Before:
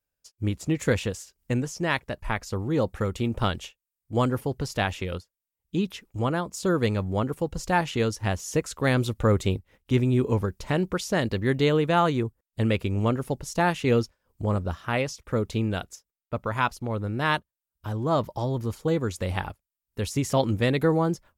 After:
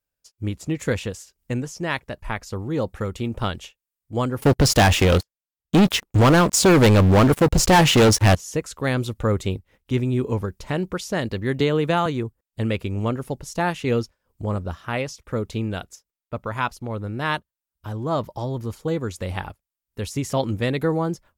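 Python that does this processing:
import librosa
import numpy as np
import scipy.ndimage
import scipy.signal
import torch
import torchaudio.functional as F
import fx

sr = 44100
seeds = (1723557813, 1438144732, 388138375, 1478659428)

y = fx.leveller(x, sr, passes=5, at=(4.42, 8.35))
y = fx.band_squash(y, sr, depth_pct=100, at=(11.6, 12.06))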